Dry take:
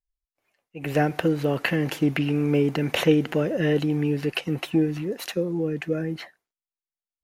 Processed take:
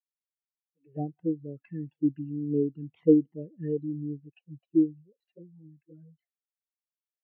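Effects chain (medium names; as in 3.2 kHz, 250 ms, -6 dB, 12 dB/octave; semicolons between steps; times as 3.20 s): touch-sensitive flanger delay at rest 6.5 ms, full sweep at -17 dBFS; spectral contrast expander 2.5:1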